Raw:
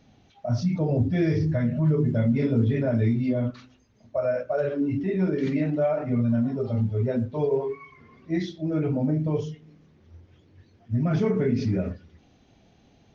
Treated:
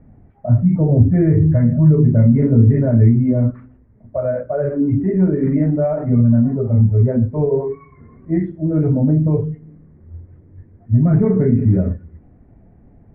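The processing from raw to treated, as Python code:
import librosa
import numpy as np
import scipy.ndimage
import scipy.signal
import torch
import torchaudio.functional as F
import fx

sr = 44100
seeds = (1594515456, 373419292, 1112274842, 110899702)

y = scipy.signal.sosfilt(scipy.signal.cheby1(4, 1.0, 2000.0, 'lowpass', fs=sr, output='sos'), x)
y = fx.tilt_eq(y, sr, slope=-3.5)
y = fx.notch(y, sr, hz=790.0, q=21.0)
y = y * 10.0 ** (2.5 / 20.0)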